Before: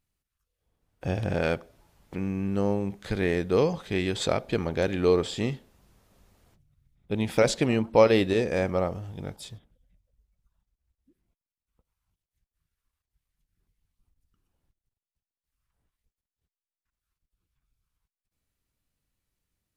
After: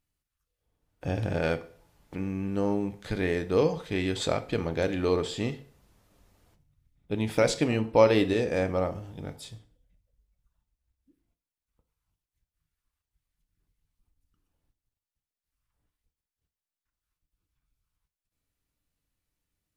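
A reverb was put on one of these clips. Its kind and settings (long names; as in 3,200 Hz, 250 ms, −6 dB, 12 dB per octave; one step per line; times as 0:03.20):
feedback delay network reverb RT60 0.48 s, low-frequency decay 0.9×, high-frequency decay 0.85×, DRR 9 dB
level −2 dB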